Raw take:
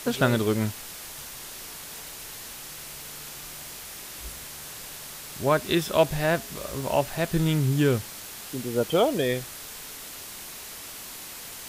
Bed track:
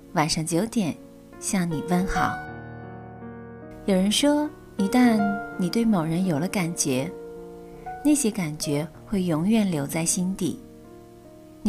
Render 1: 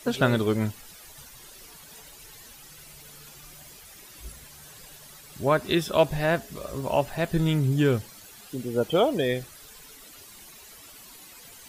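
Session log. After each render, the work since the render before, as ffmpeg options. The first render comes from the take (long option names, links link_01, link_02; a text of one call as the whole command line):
ffmpeg -i in.wav -af "afftdn=noise_reduction=12:noise_floor=-41" out.wav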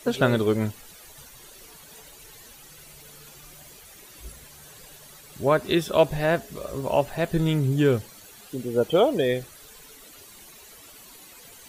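ffmpeg -i in.wav -af "equalizer=frequency=460:width=1.5:gain=3.5,bandreject=frequency=5100:width=20" out.wav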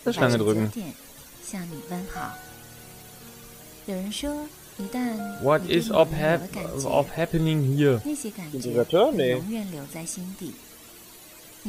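ffmpeg -i in.wav -i bed.wav -filter_complex "[1:a]volume=-10dB[link_01];[0:a][link_01]amix=inputs=2:normalize=0" out.wav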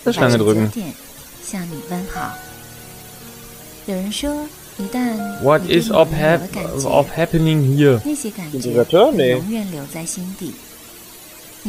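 ffmpeg -i in.wav -af "volume=8dB,alimiter=limit=-1dB:level=0:latency=1" out.wav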